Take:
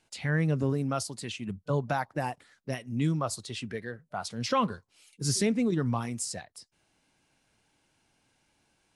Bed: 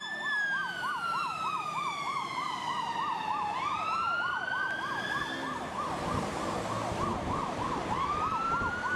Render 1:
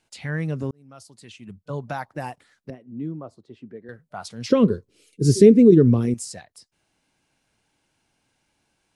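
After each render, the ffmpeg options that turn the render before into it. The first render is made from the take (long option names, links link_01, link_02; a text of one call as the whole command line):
ffmpeg -i in.wav -filter_complex "[0:a]asettb=1/sr,asplit=3[link_01][link_02][link_03];[link_01]atrim=end=2.704[link_04];[link_02]atrim=start=2.7:end=3.89,asetpts=PTS-STARTPTS,afade=type=in:duration=0.004:curve=qsin,afade=type=out:start_time=1.186:duration=0.004:curve=qsin,bandpass=frequency=320:width_type=q:width=1.2[link_05];[link_03]atrim=start=3.886[link_06];[link_04][link_05]acrossfade=duration=0.004:curve1=hsin:curve2=qsin[link_07];[link_07][link_06]acrossfade=duration=0.004:curve1=qsin:curve2=hsin,asettb=1/sr,asplit=3[link_08][link_09][link_10];[link_08]atrim=end=4.504[link_11];[link_09]atrim=start=4.5:end=6.14,asetpts=PTS-STARTPTS,afade=type=in:duration=0.004:curve=qsin,afade=type=out:start_time=1.636:duration=0.004:curve=qsin,lowshelf=frequency=590:width_type=q:width=3:gain=11.5[link_12];[link_10]atrim=start=6.136[link_13];[link_11][link_12]acrossfade=duration=0.004:curve1=hsin:curve2=qsin[link_14];[link_14][link_13]acrossfade=duration=0.004:curve1=qsin:curve2=hsin,asplit=2[link_15][link_16];[link_15]atrim=end=0.71,asetpts=PTS-STARTPTS,afade=type=out:start_time=0.706:duration=0.004:curve=hsin[link_17];[link_16]atrim=start=0.71,asetpts=PTS-STARTPTS,afade=type=in:duration=1.34[link_18];[link_17][link_18]concat=n=2:v=0:a=1" out.wav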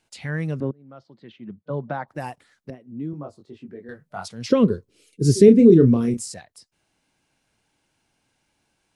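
ffmpeg -i in.wav -filter_complex "[0:a]asettb=1/sr,asplit=3[link_01][link_02][link_03];[link_01]atrim=end=0.604[link_04];[link_02]atrim=start=0.6:end=2.08,asetpts=PTS-STARTPTS,afade=type=in:duration=0.004:curve=qsin,afade=type=out:start_time=1.476:duration=0.004:curve=qsin,highpass=140,equalizer=frequency=140:width_type=q:width=4:gain=4,equalizer=frequency=220:width_type=q:width=4:gain=5,equalizer=frequency=340:width_type=q:width=4:gain=6,equalizer=frequency=540:width_type=q:width=4:gain=5,equalizer=frequency=2600:width_type=q:width=4:gain=-9,lowpass=frequency=3300:width=0.5412,lowpass=frequency=3300:width=1.3066[link_05];[link_03]atrim=start=2.076[link_06];[link_04][link_05]acrossfade=duration=0.004:curve1=hsin:curve2=qsin[link_07];[link_07][link_06]acrossfade=duration=0.004:curve1=qsin:curve2=hsin,asettb=1/sr,asplit=3[link_08][link_09][link_10];[link_08]atrim=end=3.114[link_11];[link_09]atrim=start=3.11:end=4.28,asetpts=PTS-STARTPTS,afade=type=in:duration=0.004:curve=qsin,afade=type=out:start_time=1.166:duration=0.004:curve=qsin,asplit=2[link_12][link_13];[link_13]adelay=21,volume=-3dB[link_14];[link_12][link_14]amix=inputs=2:normalize=0,atrim=end_sample=51597[link_15];[link_10]atrim=start=4.276[link_16];[link_11][link_15]acrossfade=duration=0.004:curve1=hsin:curve2=qsin[link_17];[link_17][link_16]acrossfade=duration=0.004:curve1=qsin:curve2=hsin,asettb=1/sr,asplit=3[link_18][link_19][link_20];[link_18]atrim=end=5.454[link_21];[link_19]atrim=start=5.45:end=6.34,asetpts=PTS-STARTPTS,afade=type=in:duration=0.004:curve=qsin,afade=type=out:start_time=0.886:duration=0.004:curve=qsin,asplit=2[link_22][link_23];[link_23]adelay=30,volume=-7.5dB[link_24];[link_22][link_24]amix=inputs=2:normalize=0,atrim=end_sample=39249[link_25];[link_20]atrim=start=6.336[link_26];[link_21][link_25]acrossfade=duration=0.004:curve1=hsin:curve2=qsin[link_27];[link_27][link_26]acrossfade=duration=0.004:curve1=qsin:curve2=hsin" out.wav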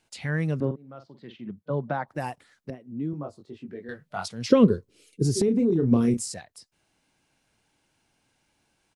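ffmpeg -i in.wav -filter_complex "[0:a]asplit=3[link_01][link_02][link_03];[link_01]afade=type=out:start_time=0.62:duration=0.02[link_04];[link_02]asplit=2[link_05][link_06];[link_06]adelay=46,volume=-9.5dB[link_07];[link_05][link_07]amix=inputs=2:normalize=0,afade=type=in:start_time=0.62:duration=0.02,afade=type=out:start_time=1.47:duration=0.02[link_08];[link_03]afade=type=in:start_time=1.47:duration=0.02[link_09];[link_04][link_08][link_09]amix=inputs=3:normalize=0,asettb=1/sr,asplit=3[link_10][link_11][link_12];[link_10]atrim=end=3.684[link_13];[link_11]atrim=start=3.68:end=4.26,asetpts=PTS-STARTPTS,afade=type=in:duration=0.004:curve=qsin,afade=type=out:start_time=0.576:duration=0.004:curve=qsin,equalizer=frequency=3300:width=0.94:gain=7[link_14];[link_12]atrim=start=4.256[link_15];[link_13][link_14]acrossfade=duration=0.004:curve1=hsin:curve2=qsin[link_16];[link_16][link_15]acrossfade=duration=0.004:curve1=qsin:curve2=hsin,asplit=3[link_17][link_18][link_19];[link_17]afade=type=out:start_time=5.22:duration=0.02[link_20];[link_18]acompressor=threshold=-20dB:ratio=5:attack=3.2:release=140:knee=1:detection=peak,afade=type=in:start_time=5.22:duration=0.02,afade=type=out:start_time=5.91:duration=0.02[link_21];[link_19]afade=type=in:start_time=5.91:duration=0.02[link_22];[link_20][link_21][link_22]amix=inputs=3:normalize=0" out.wav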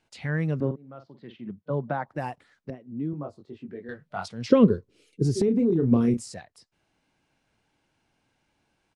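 ffmpeg -i in.wav -af "aemphasis=mode=reproduction:type=50kf" out.wav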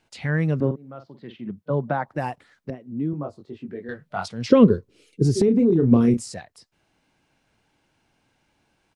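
ffmpeg -i in.wav -af "volume=4.5dB,alimiter=limit=-3dB:level=0:latency=1" out.wav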